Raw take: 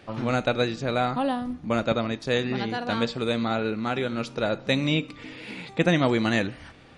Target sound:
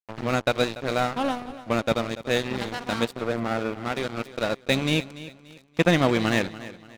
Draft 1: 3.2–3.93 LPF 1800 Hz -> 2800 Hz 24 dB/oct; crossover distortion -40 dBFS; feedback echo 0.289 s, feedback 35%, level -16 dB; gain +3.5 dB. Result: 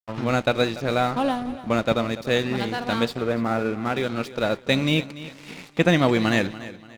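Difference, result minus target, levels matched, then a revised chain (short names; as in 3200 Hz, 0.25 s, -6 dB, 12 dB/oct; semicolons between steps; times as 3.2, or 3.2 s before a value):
crossover distortion: distortion -9 dB
3.2–3.93 LPF 1800 Hz -> 2800 Hz 24 dB/oct; crossover distortion -30 dBFS; feedback echo 0.289 s, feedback 35%, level -16 dB; gain +3.5 dB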